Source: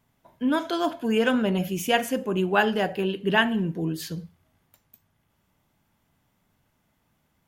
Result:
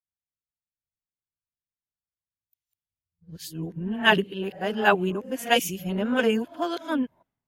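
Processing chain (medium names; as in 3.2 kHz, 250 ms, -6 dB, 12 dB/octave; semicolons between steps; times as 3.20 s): reverse the whole clip; three bands expanded up and down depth 100%; trim -2 dB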